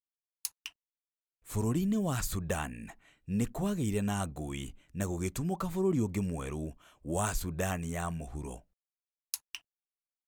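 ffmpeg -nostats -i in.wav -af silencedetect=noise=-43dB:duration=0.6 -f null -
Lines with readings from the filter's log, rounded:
silence_start: 0.68
silence_end: 1.47 | silence_duration: 0.79
silence_start: 8.58
silence_end: 9.34 | silence_duration: 0.75
silence_start: 9.57
silence_end: 10.28 | silence_duration: 0.71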